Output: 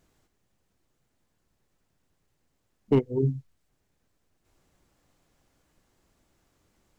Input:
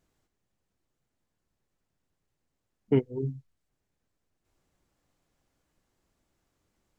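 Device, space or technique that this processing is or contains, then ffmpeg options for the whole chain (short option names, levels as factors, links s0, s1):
clipper into limiter: -af "asoftclip=type=hard:threshold=0.158,alimiter=limit=0.0944:level=0:latency=1:release=131,volume=2.24"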